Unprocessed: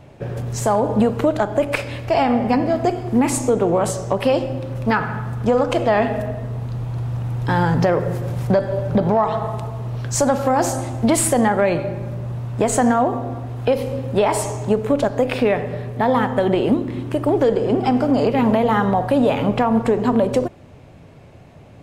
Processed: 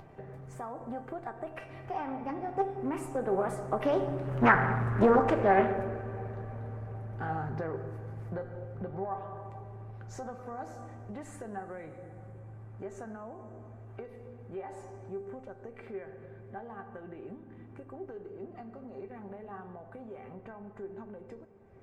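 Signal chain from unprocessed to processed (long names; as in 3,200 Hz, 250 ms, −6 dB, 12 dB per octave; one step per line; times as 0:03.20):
source passing by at 0:04.74, 33 m/s, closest 15 metres
high shelf with overshoot 2,500 Hz −10 dB, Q 1.5
upward compression, threshold −35 dBFS
tuned comb filter 390 Hz, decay 0.17 s, harmonics all, mix 80%
on a send at −15.5 dB: convolution reverb RT60 6.2 s, pre-delay 6 ms
on the sum: highs frequency-modulated by the lows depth 0.62 ms
level +7.5 dB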